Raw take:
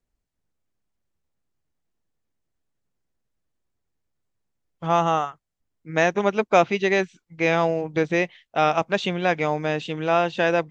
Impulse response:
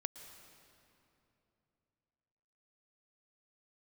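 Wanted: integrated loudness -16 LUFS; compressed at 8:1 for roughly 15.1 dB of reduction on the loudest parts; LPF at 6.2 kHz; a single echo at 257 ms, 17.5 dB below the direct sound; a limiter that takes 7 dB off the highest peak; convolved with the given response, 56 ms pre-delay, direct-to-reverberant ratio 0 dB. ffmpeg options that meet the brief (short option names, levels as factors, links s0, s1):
-filter_complex "[0:a]lowpass=6200,acompressor=threshold=0.0447:ratio=8,alimiter=limit=0.0841:level=0:latency=1,aecho=1:1:257:0.133,asplit=2[s0][s1];[1:a]atrim=start_sample=2205,adelay=56[s2];[s1][s2]afir=irnorm=-1:irlink=0,volume=1.19[s3];[s0][s3]amix=inputs=2:normalize=0,volume=5.62"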